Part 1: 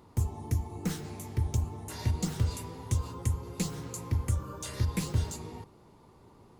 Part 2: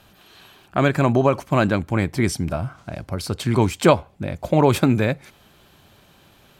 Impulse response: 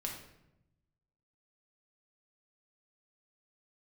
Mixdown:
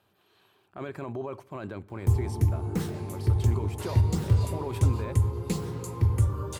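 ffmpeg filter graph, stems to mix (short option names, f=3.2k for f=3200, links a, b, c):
-filter_complex "[0:a]adelay=1900,volume=-2.5dB,asplit=2[a][b];[b]volume=-7.5dB[c];[1:a]highpass=f=190:p=1,alimiter=limit=-13dB:level=0:latency=1:release=12,volume=-18dB,asplit=2[d][e];[e]volume=-19dB[f];[2:a]atrim=start_sample=2205[g];[c][f]amix=inputs=2:normalize=0[h];[h][g]afir=irnorm=-1:irlink=0[i];[a][d][i]amix=inputs=3:normalize=0,equalizer=f=100:t=o:w=0.67:g=10,equalizer=f=400:t=o:w=0.67:g=8,equalizer=f=1k:t=o:w=0.67:g=4,equalizer=f=6.3k:t=o:w=0.67:g=-4"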